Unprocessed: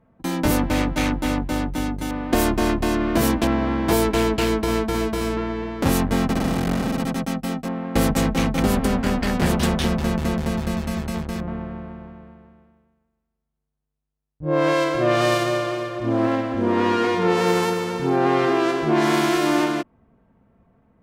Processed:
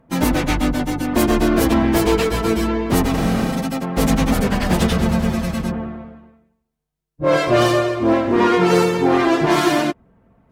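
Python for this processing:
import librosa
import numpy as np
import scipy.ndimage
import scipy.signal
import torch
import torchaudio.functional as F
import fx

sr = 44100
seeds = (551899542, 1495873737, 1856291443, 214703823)

y = fx.clip_asym(x, sr, top_db=-17.0, bottom_db=-10.0)
y = fx.stretch_vocoder_free(y, sr, factor=0.5)
y = F.gain(torch.from_numpy(y), 7.5).numpy()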